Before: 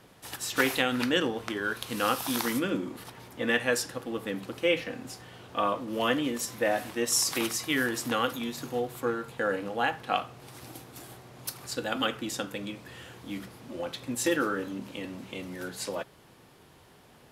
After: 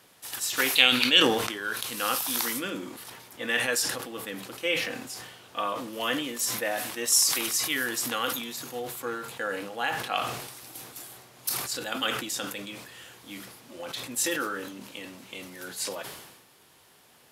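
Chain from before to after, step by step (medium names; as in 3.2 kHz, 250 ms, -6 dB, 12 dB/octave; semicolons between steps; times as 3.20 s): tilt EQ +2.5 dB/octave; time-frequency box 0.76–1.21 s, 2.1–4.7 kHz +10 dB; decay stretcher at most 50 dB/s; trim -2.5 dB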